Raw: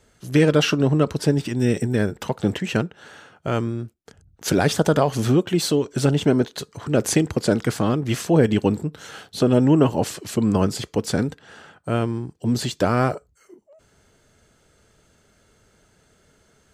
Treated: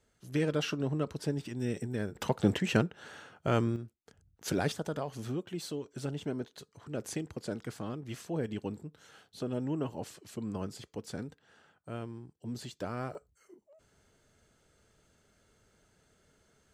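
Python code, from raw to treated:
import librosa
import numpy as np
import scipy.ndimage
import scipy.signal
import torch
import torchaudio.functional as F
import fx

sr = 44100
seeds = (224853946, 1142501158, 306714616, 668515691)

y = fx.gain(x, sr, db=fx.steps((0.0, -14.0), (2.15, -5.0), (3.76, -12.0), (4.72, -18.0), (13.15, -9.0)))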